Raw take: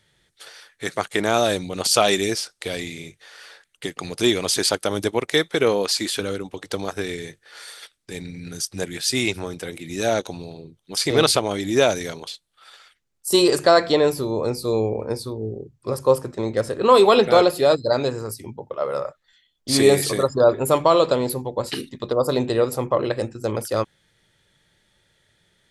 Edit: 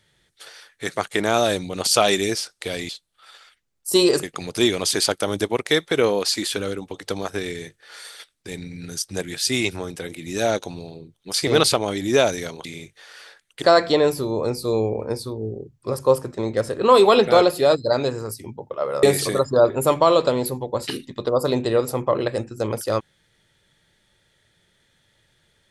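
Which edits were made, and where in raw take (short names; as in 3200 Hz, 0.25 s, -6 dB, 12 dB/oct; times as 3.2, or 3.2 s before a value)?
2.89–3.86 swap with 12.28–13.62
19.03–19.87 cut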